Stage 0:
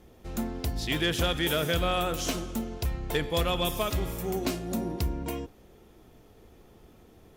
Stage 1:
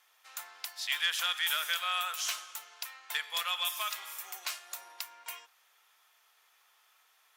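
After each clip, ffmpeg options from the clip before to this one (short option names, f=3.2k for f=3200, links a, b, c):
-af "highpass=f=1.1k:w=0.5412,highpass=f=1.1k:w=1.3066"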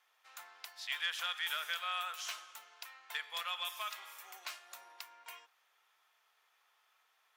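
-af "equalizer=f=12k:w=0.31:g=-8.5,volume=-4dB"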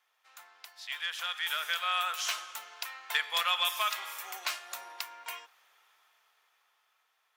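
-af "dynaudnorm=f=210:g=17:m=12dB,volume=-1.5dB"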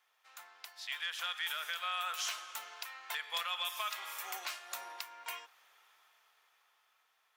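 -af "alimiter=level_in=2dB:limit=-24dB:level=0:latency=1:release=366,volume=-2dB"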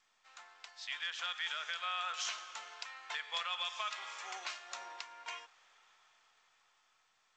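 -af "volume=-1dB" -ar 16000 -c:a g722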